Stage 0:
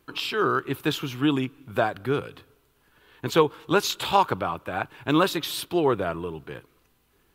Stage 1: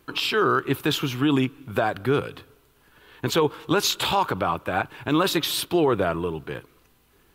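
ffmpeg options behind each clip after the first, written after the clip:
-af "alimiter=limit=-16dB:level=0:latency=1:release=44,volume=5dB"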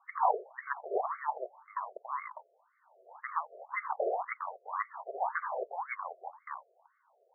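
-af "aexciter=amount=6.5:drive=4.3:freq=2.3k,lowpass=f=3k:t=q:w=0.5098,lowpass=f=3k:t=q:w=0.6013,lowpass=f=3k:t=q:w=0.9,lowpass=f=3k:t=q:w=2.563,afreqshift=-3500,afftfilt=real='re*between(b*sr/1024,490*pow(1600/490,0.5+0.5*sin(2*PI*1.9*pts/sr))/1.41,490*pow(1600/490,0.5+0.5*sin(2*PI*1.9*pts/sr))*1.41)':imag='im*between(b*sr/1024,490*pow(1600/490,0.5+0.5*sin(2*PI*1.9*pts/sr))/1.41,490*pow(1600/490,0.5+0.5*sin(2*PI*1.9*pts/sr))*1.41)':win_size=1024:overlap=0.75,volume=-5dB"

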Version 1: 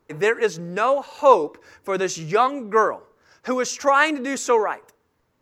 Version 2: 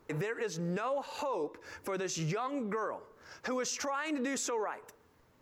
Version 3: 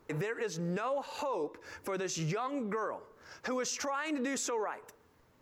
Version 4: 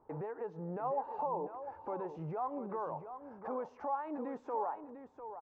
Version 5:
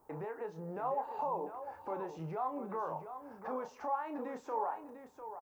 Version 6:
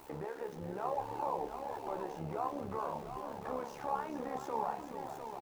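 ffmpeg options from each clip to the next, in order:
-af "acompressor=threshold=-36dB:ratio=2,alimiter=level_in=5.5dB:limit=-24dB:level=0:latency=1:release=69,volume=-5.5dB,volume=3dB"
-af anull
-af "lowpass=f=850:t=q:w=4.1,aecho=1:1:699:0.316,volume=-7.5dB"
-filter_complex "[0:a]crystalizer=i=6:c=0,asplit=2[a][b];[b]adelay=31,volume=-8dB[c];[a][c]amix=inputs=2:normalize=0,volume=-2dB"
-filter_complex "[0:a]aeval=exprs='val(0)+0.5*0.00355*sgn(val(0))':c=same,asplit=7[a][b][c][d][e][f][g];[b]adelay=425,afreqshift=-61,volume=-8dB[h];[c]adelay=850,afreqshift=-122,volume=-13.7dB[i];[d]adelay=1275,afreqshift=-183,volume=-19.4dB[j];[e]adelay=1700,afreqshift=-244,volume=-25dB[k];[f]adelay=2125,afreqshift=-305,volume=-30.7dB[l];[g]adelay=2550,afreqshift=-366,volume=-36.4dB[m];[a][h][i][j][k][l][m]amix=inputs=7:normalize=0,tremolo=f=70:d=0.71,volume=1.5dB"

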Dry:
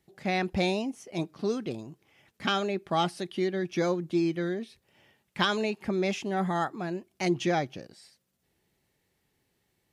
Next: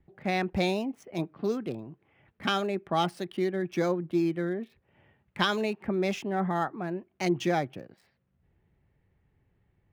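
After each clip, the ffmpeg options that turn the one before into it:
-filter_complex "[0:a]acrossover=split=130|2600[a][b][c];[a]acompressor=mode=upward:threshold=-57dB:ratio=2.5[d];[c]aeval=exprs='sgn(val(0))*max(abs(val(0))-0.00335,0)':c=same[e];[d][b][e]amix=inputs=3:normalize=0"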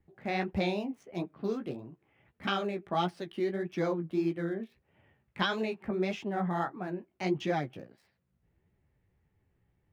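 -filter_complex "[0:a]acrossover=split=5300[a][b];[b]acompressor=threshold=-59dB:ratio=4:attack=1:release=60[c];[a][c]amix=inputs=2:normalize=0,flanger=delay=9.1:depth=9.9:regen=-18:speed=1.6:shape=triangular"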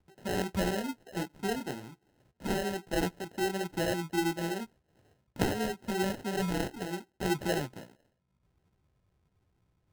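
-af "acrusher=samples=38:mix=1:aa=0.000001"

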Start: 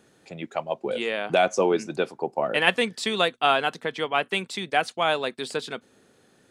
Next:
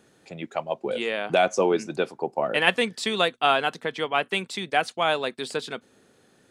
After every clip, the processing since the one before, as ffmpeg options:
-af anull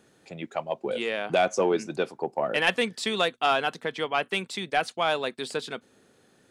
-af "acontrast=84,volume=-8.5dB"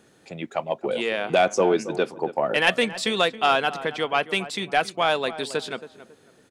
-filter_complex "[0:a]asplit=2[a][b];[b]adelay=274,lowpass=f=1.6k:p=1,volume=-13.5dB,asplit=2[c][d];[d]adelay=274,lowpass=f=1.6k:p=1,volume=0.31,asplit=2[e][f];[f]adelay=274,lowpass=f=1.6k:p=1,volume=0.31[g];[a][c][e][g]amix=inputs=4:normalize=0,volume=3.5dB"

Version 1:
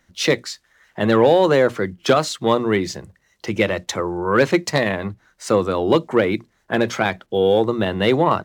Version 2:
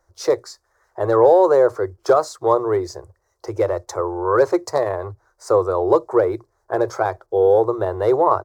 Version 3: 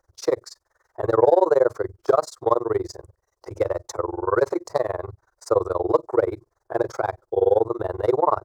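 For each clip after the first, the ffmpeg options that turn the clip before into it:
-af "firequalizer=gain_entry='entry(100,0);entry(190,-30);entry(370,2);entry(1100,2);entry(1900,-14);entry(2900,-26);entry(4800,-6)':delay=0.05:min_phase=1"
-af "tremolo=f=21:d=1"

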